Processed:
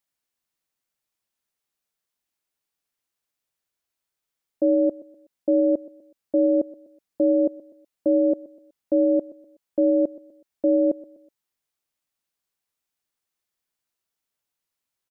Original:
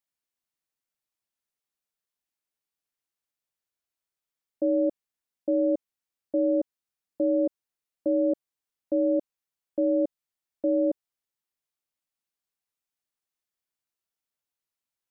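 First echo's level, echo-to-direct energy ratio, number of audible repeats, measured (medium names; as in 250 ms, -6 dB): -19.0 dB, -18.5 dB, 2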